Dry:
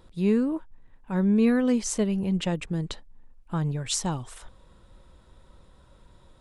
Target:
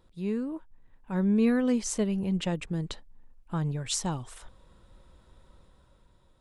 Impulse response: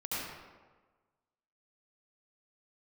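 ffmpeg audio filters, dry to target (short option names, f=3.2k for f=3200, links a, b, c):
-af "dynaudnorm=f=120:g=13:m=6dB,volume=-8.5dB"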